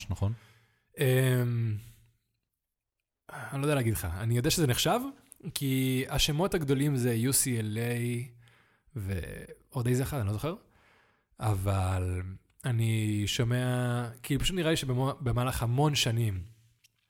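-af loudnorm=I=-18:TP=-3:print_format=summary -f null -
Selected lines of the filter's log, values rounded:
Input Integrated:    -29.6 LUFS
Input True Peak:      -8.4 dBTP
Input LRA:             3.9 LU
Input Threshold:     -40.5 LUFS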